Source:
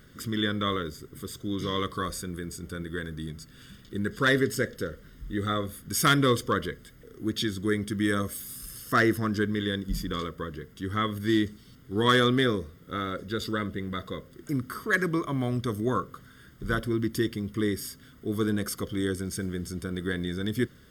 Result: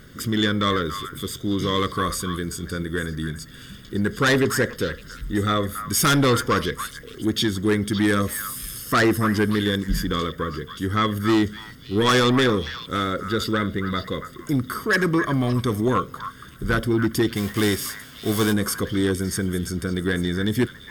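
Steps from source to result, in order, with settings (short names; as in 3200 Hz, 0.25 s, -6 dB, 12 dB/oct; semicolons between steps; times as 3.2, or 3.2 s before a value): 17.35–18.52 spectral whitening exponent 0.6; sine folder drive 6 dB, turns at -11.5 dBFS; delay with a stepping band-pass 0.282 s, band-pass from 1400 Hz, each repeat 1.4 oct, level -7.5 dB; gain -2 dB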